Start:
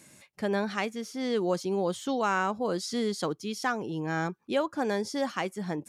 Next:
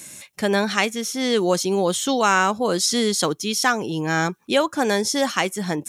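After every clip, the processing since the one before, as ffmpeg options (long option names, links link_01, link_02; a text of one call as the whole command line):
ffmpeg -i in.wav -af "highshelf=frequency=2600:gain=11.5,bandreject=frequency=4700:width=10,volume=7.5dB" out.wav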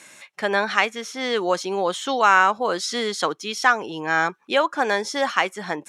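ffmpeg -i in.wav -af "bandpass=frequency=1300:width_type=q:width=0.73:csg=0,volume=3.5dB" out.wav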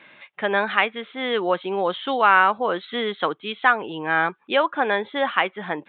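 ffmpeg -i in.wav -af "aresample=8000,aresample=44100" out.wav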